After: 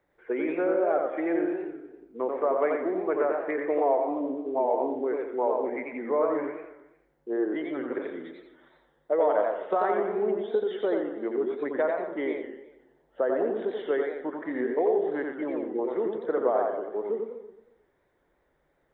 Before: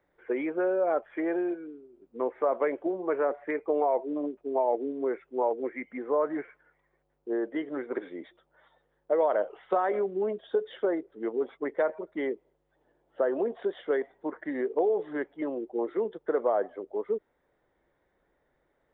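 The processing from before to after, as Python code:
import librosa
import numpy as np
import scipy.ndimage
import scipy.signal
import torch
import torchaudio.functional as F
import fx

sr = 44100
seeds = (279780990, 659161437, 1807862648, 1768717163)

p1 = x + fx.echo_feedback(x, sr, ms=120, feedback_pct=45, wet_db=-9.5, dry=0)
y = fx.echo_warbled(p1, sr, ms=88, feedback_pct=34, rate_hz=2.8, cents=143, wet_db=-4)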